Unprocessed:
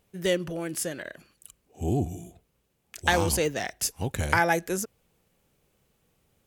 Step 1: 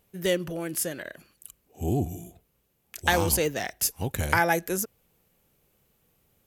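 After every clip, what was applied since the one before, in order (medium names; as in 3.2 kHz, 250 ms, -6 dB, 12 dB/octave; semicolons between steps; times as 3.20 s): peaking EQ 13 kHz +11.5 dB 0.32 oct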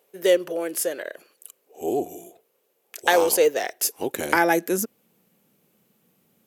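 high-pass sweep 450 Hz -> 200 Hz, 3.56–5.24 s; trim +2 dB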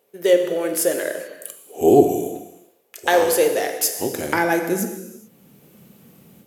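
bass shelf 240 Hz +9.5 dB; level rider gain up to 13 dB; gated-style reverb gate 460 ms falling, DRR 4.5 dB; trim -1.5 dB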